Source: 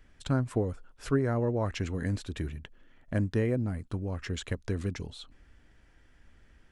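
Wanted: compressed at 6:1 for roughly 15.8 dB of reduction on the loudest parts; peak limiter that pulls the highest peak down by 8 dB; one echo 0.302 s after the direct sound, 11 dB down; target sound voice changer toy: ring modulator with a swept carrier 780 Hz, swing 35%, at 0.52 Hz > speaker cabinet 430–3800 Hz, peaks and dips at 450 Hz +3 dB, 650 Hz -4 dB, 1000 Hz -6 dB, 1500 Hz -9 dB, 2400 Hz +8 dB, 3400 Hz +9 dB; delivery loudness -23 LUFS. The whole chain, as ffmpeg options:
-af "acompressor=threshold=-40dB:ratio=6,alimiter=level_in=11.5dB:limit=-24dB:level=0:latency=1,volume=-11.5dB,aecho=1:1:302:0.282,aeval=exprs='val(0)*sin(2*PI*780*n/s+780*0.35/0.52*sin(2*PI*0.52*n/s))':c=same,highpass=430,equalizer=f=450:t=q:w=4:g=3,equalizer=f=650:t=q:w=4:g=-4,equalizer=f=1k:t=q:w=4:g=-6,equalizer=f=1.5k:t=q:w=4:g=-9,equalizer=f=2.4k:t=q:w=4:g=8,equalizer=f=3.4k:t=q:w=4:g=9,lowpass=f=3.8k:w=0.5412,lowpass=f=3.8k:w=1.3066,volume=27.5dB"

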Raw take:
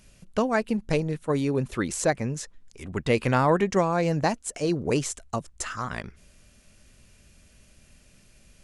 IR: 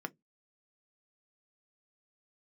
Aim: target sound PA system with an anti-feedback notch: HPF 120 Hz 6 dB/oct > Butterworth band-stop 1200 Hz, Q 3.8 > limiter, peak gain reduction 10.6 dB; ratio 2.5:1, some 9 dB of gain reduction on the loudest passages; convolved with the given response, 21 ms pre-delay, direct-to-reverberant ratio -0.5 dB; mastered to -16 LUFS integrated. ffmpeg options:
-filter_complex "[0:a]acompressor=threshold=-31dB:ratio=2.5,asplit=2[a][b];[1:a]atrim=start_sample=2205,adelay=21[c];[b][c]afir=irnorm=-1:irlink=0,volume=-0.5dB[d];[a][d]amix=inputs=2:normalize=0,highpass=f=120:p=1,asuperstop=centerf=1200:order=8:qfactor=3.8,volume=19dB,alimiter=limit=-6.5dB:level=0:latency=1"

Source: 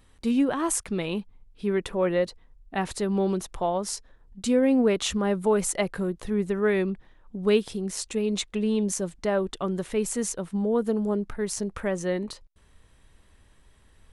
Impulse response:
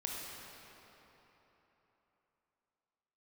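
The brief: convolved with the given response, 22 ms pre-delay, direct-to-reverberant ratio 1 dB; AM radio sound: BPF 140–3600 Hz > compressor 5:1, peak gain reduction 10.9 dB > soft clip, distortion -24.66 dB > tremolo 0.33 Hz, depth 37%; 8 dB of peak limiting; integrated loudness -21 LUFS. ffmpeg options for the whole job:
-filter_complex "[0:a]alimiter=limit=-18dB:level=0:latency=1,asplit=2[a][b];[1:a]atrim=start_sample=2205,adelay=22[c];[b][c]afir=irnorm=-1:irlink=0,volume=-2.5dB[d];[a][d]amix=inputs=2:normalize=0,highpass=140,lowpass=3.6k,acompressor=threshold=-29dB:ratio=5,asoftclip=threshold=-22dB,tremolo=f=0.33:d=0.37,volume=14.5dB"

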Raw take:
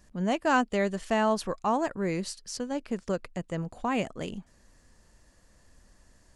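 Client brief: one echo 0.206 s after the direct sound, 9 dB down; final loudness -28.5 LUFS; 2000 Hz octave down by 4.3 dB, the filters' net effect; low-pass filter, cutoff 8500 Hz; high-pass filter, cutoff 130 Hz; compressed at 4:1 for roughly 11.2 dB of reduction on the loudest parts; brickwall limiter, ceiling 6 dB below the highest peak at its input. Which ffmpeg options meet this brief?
-af "highpass=130,lowpass=8.5k,equalizer=f=2k:t=o:g=-6,acompressor=threshold=-35dB:ratio=4,alimiter=level_in=6dB:limit=-24dB:level=0:latency=1,volume=-6dB,aecho=1:1:206:0.355,volume=11.5dB"

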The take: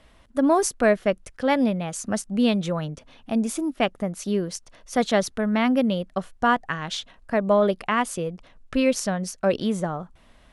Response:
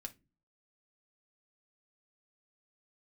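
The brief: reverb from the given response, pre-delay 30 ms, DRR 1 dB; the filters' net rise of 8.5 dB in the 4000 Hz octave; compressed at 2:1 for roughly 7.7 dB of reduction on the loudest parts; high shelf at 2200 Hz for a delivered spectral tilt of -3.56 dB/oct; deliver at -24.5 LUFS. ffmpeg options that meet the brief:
-filter_complex "[0:a]highshelf=f=2.2k:g=5.5,equalizer=f=4k:t=o:g=6,acompressor=threshold=-28dB:ratio=2,asplit=2[a][b];[1:a]atrim=start_sample=2205,adelay=30[c];[b][c]afir=irnorm=-1:irlink=0,volume=3dB[d];[a][d]amix=inputs=2:normalize=0,volume=1dB"

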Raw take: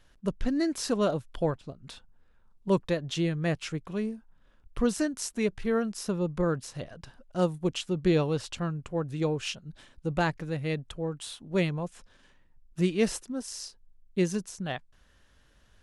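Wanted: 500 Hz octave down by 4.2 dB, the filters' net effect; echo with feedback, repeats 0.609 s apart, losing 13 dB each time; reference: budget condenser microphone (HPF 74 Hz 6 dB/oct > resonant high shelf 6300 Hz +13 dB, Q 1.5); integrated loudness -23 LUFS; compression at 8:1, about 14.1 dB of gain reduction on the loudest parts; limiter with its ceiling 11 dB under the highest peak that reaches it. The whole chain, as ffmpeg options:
-af "equalizer=f=500:t=o:g=-5,acompressor=threshold=-36dB:ratio=8,alimiter=level_in=9dB:limit=-24dB:level=0:latency=1,volume=-9dB,highpass=f=74:p=1,highshelf=f=6.3k:t=q:w=1.5:g=13,aecho=1:1:609|1218|1827:0.224|0.0493|0.0108,volume=16.5dB"

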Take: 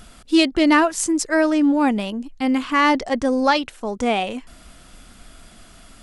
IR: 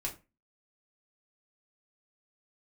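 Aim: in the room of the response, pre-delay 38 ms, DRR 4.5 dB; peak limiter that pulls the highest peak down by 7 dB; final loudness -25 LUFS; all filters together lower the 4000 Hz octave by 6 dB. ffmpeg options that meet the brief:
-filter_complex "[0:a]equalizer=f=4k:t=o:g=-8.5,alimiter=limit=-13dB:level=0:latency=1,asplit=2[a][b];[1:a]atrim=start_sample=2205,adelay=38[c];[b][c]afir=irnorm=-1:irlink=0,volume=-6dB[d];[a][d]amix=inputs=2:normalize=0,volume=-4.5dB"

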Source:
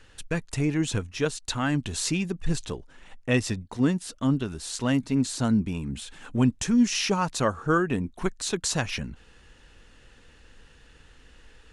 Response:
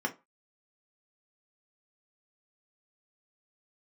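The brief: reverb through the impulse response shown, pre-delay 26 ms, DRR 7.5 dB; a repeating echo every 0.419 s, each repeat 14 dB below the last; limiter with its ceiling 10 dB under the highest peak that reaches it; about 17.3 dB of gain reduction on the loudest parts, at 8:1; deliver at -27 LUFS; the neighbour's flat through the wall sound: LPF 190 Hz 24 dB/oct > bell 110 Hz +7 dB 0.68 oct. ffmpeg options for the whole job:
-filter_complex "[0:a]acompressor=threshold=-35dB:ratio=8,alimiter=level_in=6.5dB:limit=-24dB:level=0:latency=1,volume=-6.5dB,aecho=1:1:419|838:0.2|0.0399,asplit=2[a][b];[1:a]atrim=start_sample=2205,adelay=26[c];[b][c]afir=irnorm=-1:irlink=0,volume=-14dB[d];[a][d]amix=inputs=2:normalize=0,lowpass=f=190:w=0.5412,lowpass=f=190:w=1.3066,equalizer=f=110:t=o:w=0.68:g=7,volume=16.5dB"

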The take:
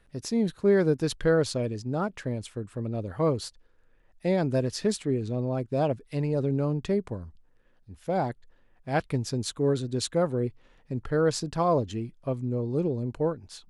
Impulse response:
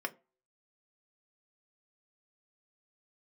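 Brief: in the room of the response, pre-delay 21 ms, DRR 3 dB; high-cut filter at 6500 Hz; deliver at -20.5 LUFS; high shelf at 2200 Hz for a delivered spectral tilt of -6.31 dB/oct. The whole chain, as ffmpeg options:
-filter_complex "[0:a]lowpass=6.5k,highshelf=f=2.2k:g=-4.5,asplit=2[a][b];[1:a]atrim=start_sample=2205,adelay=21[c];[b][c]afir=irnorm=-1:irlink=0,volume=-6.5dB[d];[a][d]amix=inputs=2:normalize=0,volume=6.5dB"

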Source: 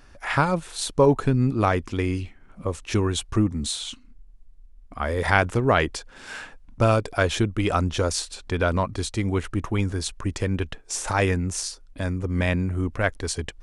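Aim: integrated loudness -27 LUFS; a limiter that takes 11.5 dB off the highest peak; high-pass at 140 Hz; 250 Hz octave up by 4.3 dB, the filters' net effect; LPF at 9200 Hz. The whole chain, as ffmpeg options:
-af "highpass=140,lowpass=9.2k,equalizer=f=250:t=o:g=6,volume=-1.5dB,alimiter=limit=-13dB:level=0:latency=1"

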